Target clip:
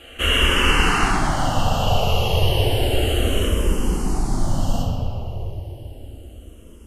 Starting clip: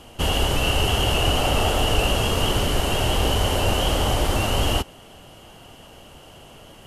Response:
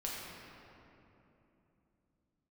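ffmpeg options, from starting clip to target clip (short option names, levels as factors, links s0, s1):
-filter_complex "[0:a]asetnsamples=n=441:p=0,asendcmd='1.08 equalizer g -3.5;3.47 equalizer g -14',equalizer=f=1800:t=o:w=2.3:g=10.5[s0];[1:a]atrim=start_sample=2205[s1];[s0][s1]afir=irnorm=-1:irlink=0,asplit=2[s2][s3];[s3]afreqshift=-0.32[s4];[s2][s4]amix=inputs=2:normalize=1,volume=1.19"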